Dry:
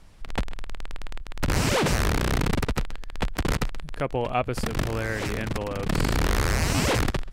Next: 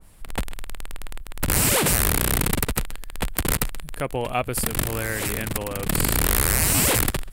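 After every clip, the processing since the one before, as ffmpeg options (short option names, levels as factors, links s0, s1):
-af "aexciter=amount=5.1:drive=5.9:freq=8100,adynamicequalizer=threshold=0.00891:dfrequency=1700:dqfactor=0.7:tfrequency=1700:tqfactor=0.7:attack=5:release=100:ratio=0.375:range=2:mode=boostabove:tftype=highshelf"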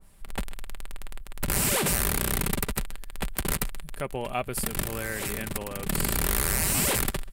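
-af "aecho=1:1:5.1:0.31,volume=0.531"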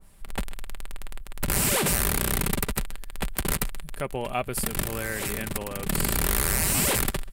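-af "acontrast=39,volume=0.631"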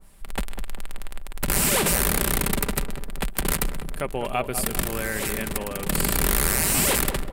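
-filter_complex "[0:a]equalizer=f=98:w=1.8:g=-6,asplit=2[s0][s1];[s1]adelay=198,lowpass=f=1000:p=1,volume=0.398,asplit=2[s2][s3];[s3]adelay=198,lowpass=f=1000:p=1,volume=0.54,asplit=2[s4][s5];[s5]adelay=198,lowpass=f=1000:p=1,volume=0.54,asplit=2[s6][s7];[s7]adelay=198,lowpass=f=1000:p=1,volume=0.54,asplit=2[s8][s9];[s9]adelay=198,lowpass=f=1000:p=1,volume=0.54,asplit=2[s10][s11];[s11]adelay=198,lowpass=f=1000:p=1,volume=0.54[s12];[s0][s2][s4][s6][s8][s10][s12]amix=inputs=7:normalize=0,volume=1.33"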